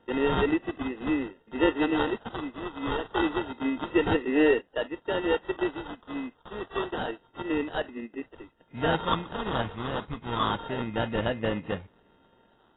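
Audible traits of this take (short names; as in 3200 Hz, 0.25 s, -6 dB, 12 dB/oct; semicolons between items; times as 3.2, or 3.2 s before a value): a buzz of ramps at a fixed pitch in blocks of 8 samples; phasing stages 6, 0.28 Hz, lowest notch 450–1400 Hz; aliases and images of a low sample rate 2300 Hz, jitter 0%; AAC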